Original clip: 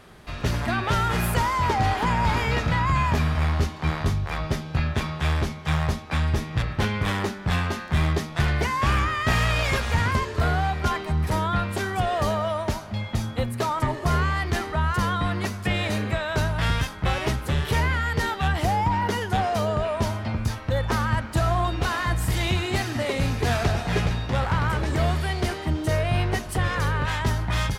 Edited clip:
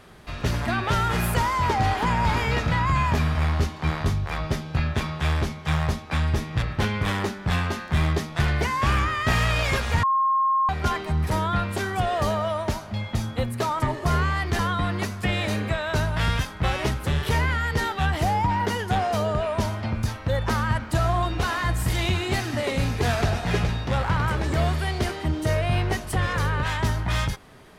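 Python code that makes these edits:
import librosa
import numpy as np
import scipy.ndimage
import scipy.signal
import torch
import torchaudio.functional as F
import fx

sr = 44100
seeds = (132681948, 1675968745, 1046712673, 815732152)

y = fx.edit(x, sr, fx.bleep(start_s=10.03, length_s=0.66, hz=1070.0, db=-18.0),
    fx.cut(start_s=14.59, length_s=0.42), tone=tone)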